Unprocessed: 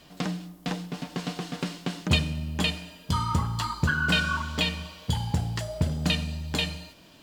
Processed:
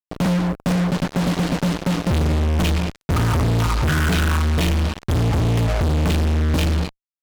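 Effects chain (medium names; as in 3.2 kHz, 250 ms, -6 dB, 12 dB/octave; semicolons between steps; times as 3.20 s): RIAA curve playback; fuzz box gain 41 dB, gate -35 dBFS; trim -3.5 dB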